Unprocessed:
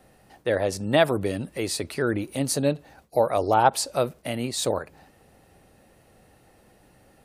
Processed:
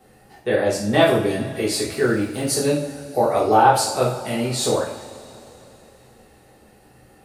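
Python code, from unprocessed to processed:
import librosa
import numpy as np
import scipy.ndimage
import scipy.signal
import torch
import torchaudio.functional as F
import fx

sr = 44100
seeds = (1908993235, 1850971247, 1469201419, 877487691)

y = fx.law_mismatch(x, sr, coded='A', at=(1.92, 2.44))
y = fx.rev_double_slope(y, sr, seeds[0], early_s=0.5, late_s=3.6, knee_db=-20, drr_db=-6.0)
y = F.gain(torch.from_numpy(y), -2.0).numpy()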